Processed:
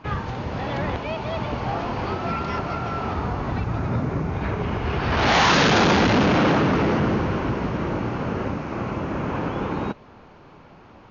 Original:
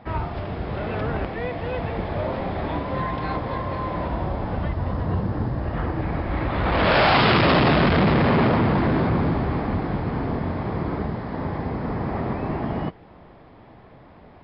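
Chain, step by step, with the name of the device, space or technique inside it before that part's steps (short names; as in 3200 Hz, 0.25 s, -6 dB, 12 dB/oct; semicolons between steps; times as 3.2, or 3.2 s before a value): nightcore (varispeed +30%)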